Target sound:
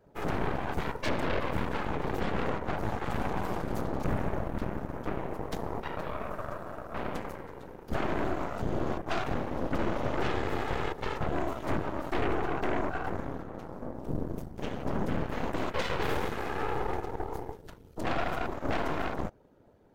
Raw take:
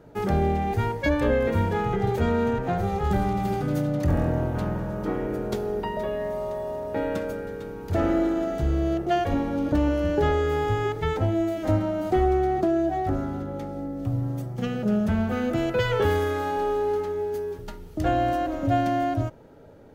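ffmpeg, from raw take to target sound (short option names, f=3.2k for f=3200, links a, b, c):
-af "afftfilt=real='hypot(re,im)*cos(2*PI*random(0))':imag='hypot(re,im)*sin(2*PI*random(1))':win_size=512:overlap=0.75,aeval=exprs='0.178*(cos(1*acos(clip(val(0)/0.178,-1,1)))-cos(1*PI/2))+0.0631*(cos(8*acos(clip(val(0)/0.178,-1,1)))-cos(8*PI/2))':c=same,volume=-6dB"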